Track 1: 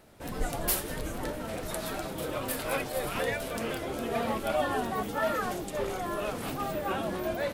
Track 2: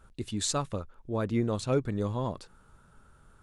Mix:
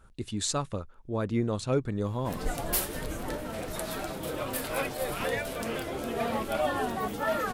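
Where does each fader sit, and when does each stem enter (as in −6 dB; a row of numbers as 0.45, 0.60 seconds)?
0.0, 0.0 decibels; 2.05, 0.00 seconds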